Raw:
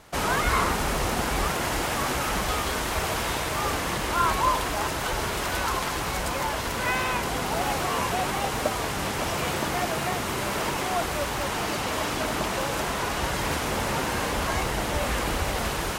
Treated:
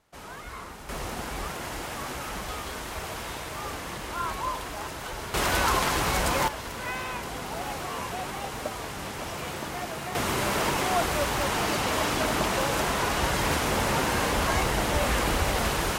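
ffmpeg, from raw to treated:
-af "asetnsamples=n=441:p=0,asendcmd='0.89 volume volume -8dB;5.34 volume volume 3dB;6.48 volume volume -7dB;10.15 volume volume 1.5dB',volume=-17dB"

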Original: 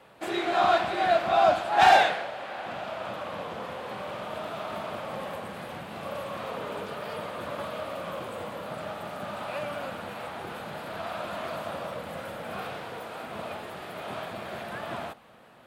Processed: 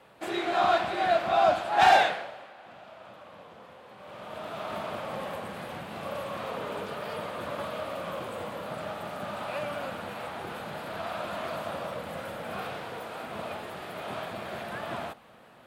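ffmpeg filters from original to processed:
-af "volume=11.5dB,afade=t=out:st=2.06:d=0.48:silence=0.266073,afade=t=in:st=3.97:d=0.76:silence=0.223872"

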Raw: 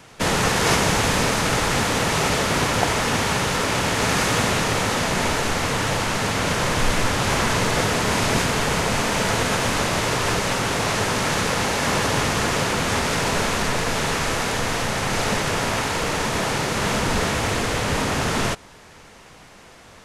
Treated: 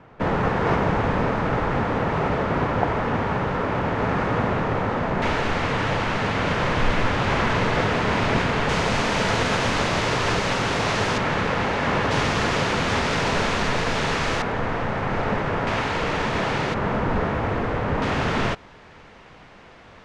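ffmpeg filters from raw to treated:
-af "asetnsamples=n=441:p=0,asendcmd='5.22 lowpass f 2900;8.69 lowpass f 4800;11.18 lowpass f 2600;12.11 lowpass f 4500;14.42 lowpass f 1700;15.67 lowpass f 3200;16.74 lowpass f 1500;18.02 lowpass f 3200',lowpass=1.4k"

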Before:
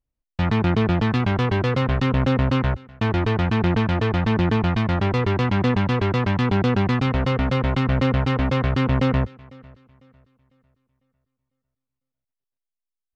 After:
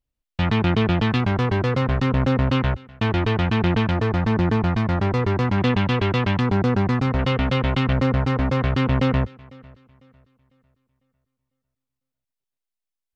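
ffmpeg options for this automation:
-af "asetnsamples=n=441:p=0,asendcmd='1.2 equalizer g -2.5;2.47 equalizer g 3.5;3.91 equalizer g -5;5.58 equalizer g 5;6.4 equalizer g -6.5;7.19 equalizer g 5;7.93 equalizer g -4.5;8.59 equalizer g 1.5',equalizer=f=3.1k:t=o:w=0.93:g=5"

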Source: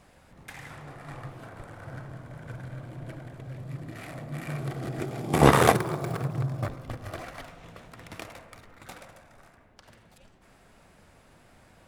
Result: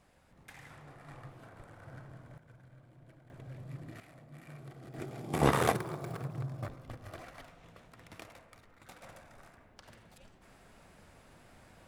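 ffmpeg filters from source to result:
-af "asetnsamples=n=441:p=0,asendcmd='2.38 volume volume -18dB;3.3 volume volume -7dB;4 volume volume -16dB;4.94 volume volume -9dB;9.03 volume volume -1.5dB',volume=-9dB"

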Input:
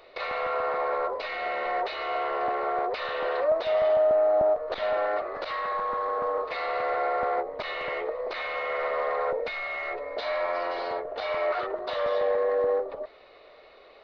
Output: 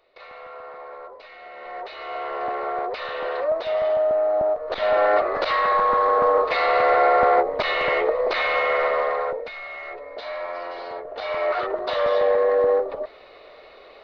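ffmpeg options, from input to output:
-af "volume=18.5dB,afade=t=in:st=1.51:d=1.01:silence=0.251189,afade=t=in:st=4.59:d=0.6:silence=0.354813,afade=t=out:st=8.55:d=0.9:silence=0.237137,afade=t=in:st=10.92:d=0.88:silence=0.375837"

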